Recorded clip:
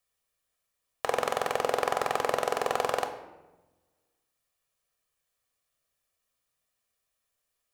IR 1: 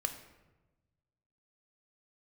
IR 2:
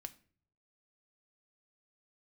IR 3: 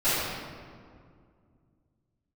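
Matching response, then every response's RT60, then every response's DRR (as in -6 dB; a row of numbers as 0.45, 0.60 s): 1; 1.1, 0.50, 2.1 s; 6.0, 8.5, -18.0 dB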